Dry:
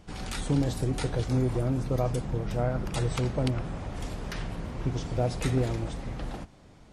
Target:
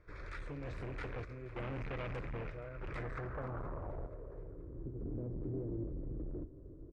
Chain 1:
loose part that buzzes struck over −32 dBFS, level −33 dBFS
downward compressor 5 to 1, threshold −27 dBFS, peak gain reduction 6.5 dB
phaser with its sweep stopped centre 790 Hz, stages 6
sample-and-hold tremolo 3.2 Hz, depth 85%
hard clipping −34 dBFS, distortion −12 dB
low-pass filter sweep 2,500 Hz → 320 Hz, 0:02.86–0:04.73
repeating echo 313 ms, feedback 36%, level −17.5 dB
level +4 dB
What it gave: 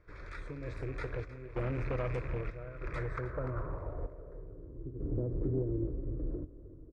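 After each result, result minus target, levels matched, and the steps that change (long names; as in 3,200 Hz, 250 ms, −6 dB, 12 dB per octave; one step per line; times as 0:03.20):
echo 164 ms early; hard clipping: distortion −7 dB
change: repeating echo 477 ms, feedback 36%, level −17.5 dB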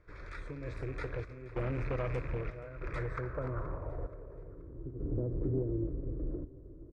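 hard clipping: distortion −7 dB
change: hard clipping −43.5 dBFS, distortion −4 dB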